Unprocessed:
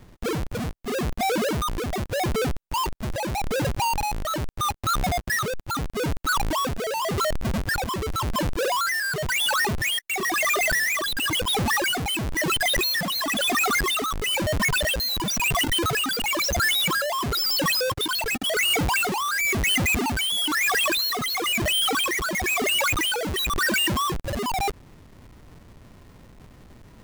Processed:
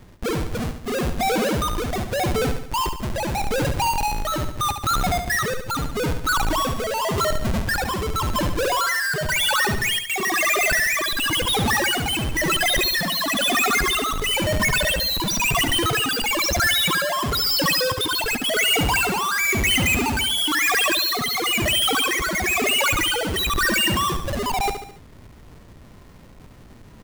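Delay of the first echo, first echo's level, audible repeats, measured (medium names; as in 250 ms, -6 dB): 71 ms, -8.5 dB, 4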